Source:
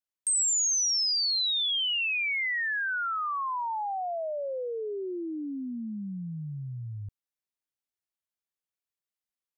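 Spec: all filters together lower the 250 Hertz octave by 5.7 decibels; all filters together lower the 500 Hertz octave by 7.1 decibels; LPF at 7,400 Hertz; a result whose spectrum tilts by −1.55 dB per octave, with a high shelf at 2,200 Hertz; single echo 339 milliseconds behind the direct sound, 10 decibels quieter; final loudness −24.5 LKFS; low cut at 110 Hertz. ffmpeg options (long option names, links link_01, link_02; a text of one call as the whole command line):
ffmpeg -i in.wav -af "highpass=110,lowpass=7400,equalizer=frequency=250:width_type=o:gain=-5,equalizer=frequency=500:width_type=o:gain=-7.5,highshelf=frequency=2200:gain=-6.5,aecho=1:1:339:0.316,volume=8dB" out.wav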